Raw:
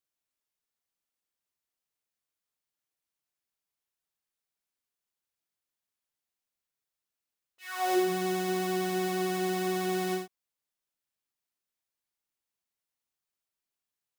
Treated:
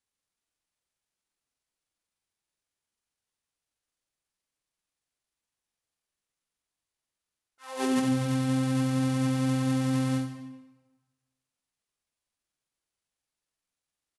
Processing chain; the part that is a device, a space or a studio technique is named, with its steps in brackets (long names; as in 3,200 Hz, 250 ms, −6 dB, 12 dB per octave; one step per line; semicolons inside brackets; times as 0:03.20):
monster voice (pitch shifter −6 semitones; formants moved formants −5 semitones; low-shelf EQ 130 Hz +6 dB; convolution reverb RT60 1.2 s, pre-delay 49 ms, DRR 7.5 dB)